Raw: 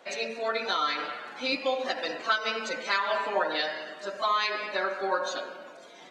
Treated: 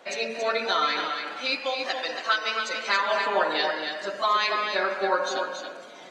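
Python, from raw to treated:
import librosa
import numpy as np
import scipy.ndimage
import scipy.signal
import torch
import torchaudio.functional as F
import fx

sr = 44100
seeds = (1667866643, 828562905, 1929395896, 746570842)

y = fx.low_shelf(x, sr, hz=470.0, db=-11.0, at=(1.32, 2.88))
y = y + 10.0 ** (-6.5 / 20.0) * np.pad(y, (int(278 * sr / 1000.0), 0))[:len(y)]
y = F.gain(torch.from_numpy(y), 3.0).numpy()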